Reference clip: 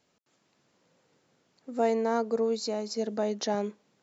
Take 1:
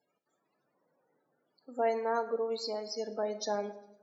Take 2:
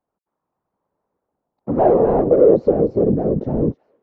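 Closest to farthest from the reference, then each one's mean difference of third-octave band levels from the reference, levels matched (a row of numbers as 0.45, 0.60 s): 1, 2; 4.5, 12.5 dB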